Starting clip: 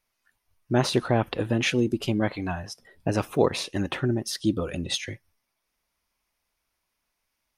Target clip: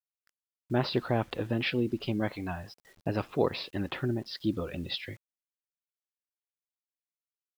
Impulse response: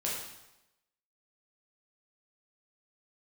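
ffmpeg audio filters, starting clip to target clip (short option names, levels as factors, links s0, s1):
-af "aresample=11025,aresample=44100,acrusher=bits=8:mix=0:aa=0.000001,volume=0.531"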